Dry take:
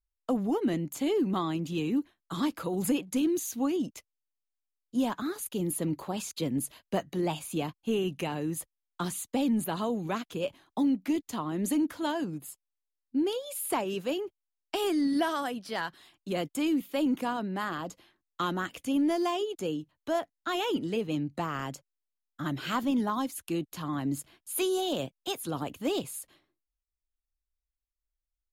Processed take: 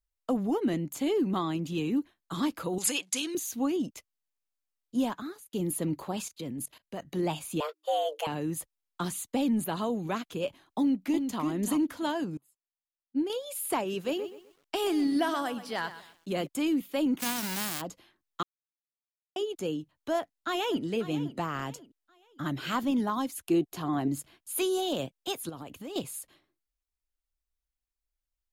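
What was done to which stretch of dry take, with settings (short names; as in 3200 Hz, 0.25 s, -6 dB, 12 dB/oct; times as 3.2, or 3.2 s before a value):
2.78–3.35 weighting filter ITU-R 468
5.02–5.53 fade out
6.28–7.05 level quantiser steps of 18 dB
7.6–8.27 frequency shift +310 Hz
10.79–11.43 echo throw 0.34 s, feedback 20%, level -6 dB
12.37–13.3 upward expander 2.5:1, over -40 dBFS
13.92–16.47 lo-fi delay 0.126 s, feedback 35%, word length 9-bit, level -13 dB
17.19–17.8 spectral whitening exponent 0.1
18.43–19.36 mute
20.17–20.83 echo throw 0.54 s, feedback 35%, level -14.5 dB
23.47–24.08 small resonant body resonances 380/710 Hz, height 11 dB, ringing for 35 ms
25.49–25.96 compressor 4:1, threshold -39 dBFS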